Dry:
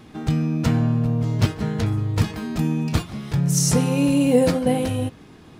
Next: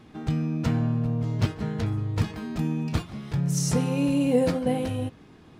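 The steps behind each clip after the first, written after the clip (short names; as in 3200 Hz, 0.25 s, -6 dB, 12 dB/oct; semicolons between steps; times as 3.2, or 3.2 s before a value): high shelf 6000 Hz -6.5 dB; gain -5 dB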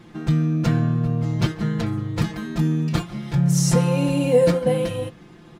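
comb 5.8 ms, depth 84%; gain +3 dB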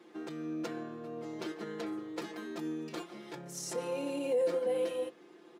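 limiter -16 dBFS, peak gain reduction 10 dB; ladder high-pass 310 Hz, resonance 45%; gain -1.5 dB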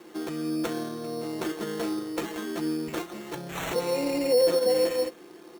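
sample-and-hold 9×; gain +8.5 dB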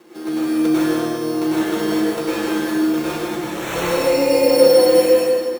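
echo 0.156 s -3.5 dB; plate-style reverb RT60 1.6 s, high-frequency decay 0.8×, pre-delay 85 ms, DRR -9 dB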